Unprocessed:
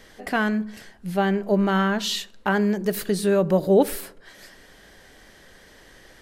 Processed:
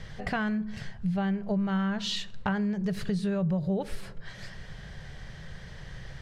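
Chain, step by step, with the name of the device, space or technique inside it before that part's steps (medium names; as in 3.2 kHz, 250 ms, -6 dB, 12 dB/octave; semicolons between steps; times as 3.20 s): jukebox (low-pass 5.5 kHz 12 dB/octave; resonant low shelf 200 Hz +11 dB, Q 3; compression 4:1, threshold -30 dBFS, peak gain reduction 16.5 dB); trim +1.5 dB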